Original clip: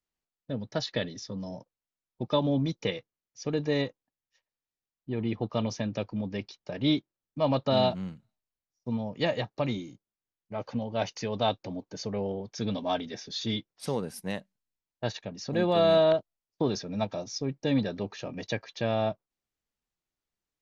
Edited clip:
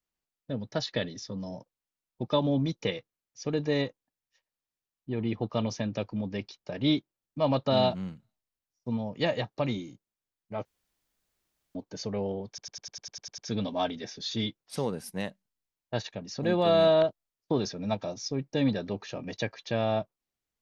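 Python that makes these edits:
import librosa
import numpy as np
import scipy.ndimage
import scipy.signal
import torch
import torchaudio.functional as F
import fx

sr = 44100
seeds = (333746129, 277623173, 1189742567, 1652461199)

y = fx.edit(x, sr, fx.room_tone_fill(start_s=10.65, length_s=1.1),
    fx.stutter(start_s=12.48, slice_s=0.1, count=10), tone=tone)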